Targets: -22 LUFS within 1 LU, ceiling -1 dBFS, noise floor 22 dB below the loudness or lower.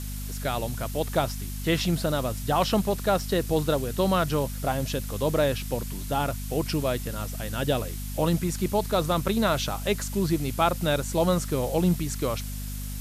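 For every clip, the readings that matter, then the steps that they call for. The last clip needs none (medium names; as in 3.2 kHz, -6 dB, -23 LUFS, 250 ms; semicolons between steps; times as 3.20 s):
hum 50 Hz; highest harmonic 250 Hz; hum level -31 dBFS; noise floor -34 dBFS; noise floor target -49 dBFS; loudness -27.0 LUFS; peak level -8.0 dBFS; loudness target -22.0 LUFS
-> hum notches 50/100/150/200/250 Hz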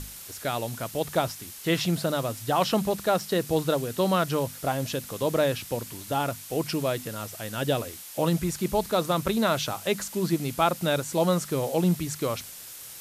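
hum not found; noise floor -43 dBFS; noise floor target -50 dBFS
-> noise print and reduce 7 dB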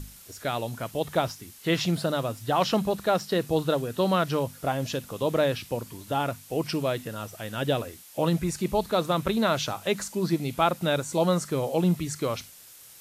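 noise floor -50 dBFS; loudness -27.5 LUFS; peak level -8.5 dBFS; loudness target -22.0 LUFS
-> trim +5.5 dB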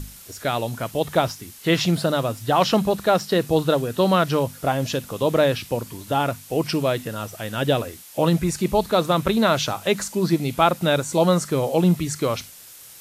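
loudness -22.0 LUFS; peak level -3.0 dBFS; noise floor -44 dBFS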